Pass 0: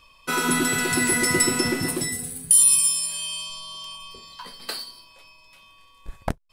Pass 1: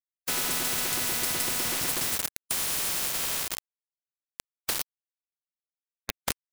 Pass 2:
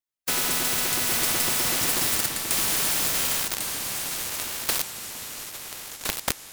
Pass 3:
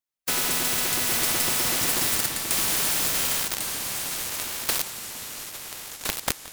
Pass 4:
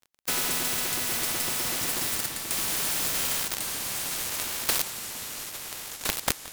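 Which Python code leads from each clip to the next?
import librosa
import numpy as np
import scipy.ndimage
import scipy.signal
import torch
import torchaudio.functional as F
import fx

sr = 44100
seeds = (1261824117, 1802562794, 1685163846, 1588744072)

y1 = fx.rider(x, sr, range_db=4, speed_s=0.5)
y1 = np.where(np.abs(y1) >= 10.0 ** (-23.5 / 20.0), y1, 0.0)
y1 = fx.spectral_comp(y1, sr, ratio=4.0)
y2 = fx.echo_pitch(y1, sr, ms=790, semitones=-2, count=3, db_per_echo=-6.0)
y2 = y2 * 10.0 ** (3.5 / 20.0)
y3 = y2 + 10.0 ** (-19.0 / 20.0) * np.pad(y2, (int(174 * sr / 1000.0), 0))[:len(y2)]
y4 = fx.rider(y3, sr, range_db=3, speed_s=2.0)
y4 = fx.dmg_crackle(y4, sr, seeds[0], per_s=26.0, level_db=-36.0)
y4 = y4 * 10.0 ** (-3.0 / 20.0)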